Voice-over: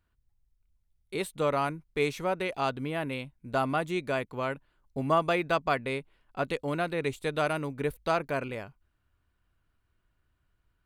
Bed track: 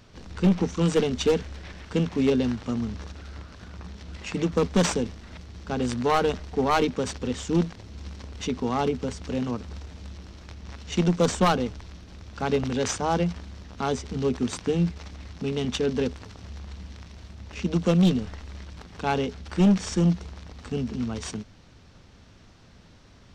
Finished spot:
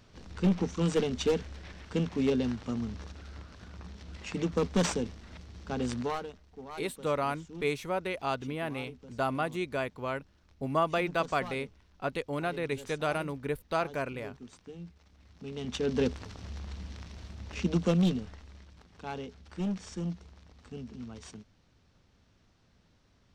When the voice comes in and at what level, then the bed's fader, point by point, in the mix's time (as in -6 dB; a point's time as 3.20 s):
5.65 s, -2.5 dB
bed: 6.00 s -5.5 dB
6.33 s -21.5 dB
15.06 s -21.5 dB
16.03 s -1.5 dB
17.58 s -1.5 dB
18.73 s -13.5 dB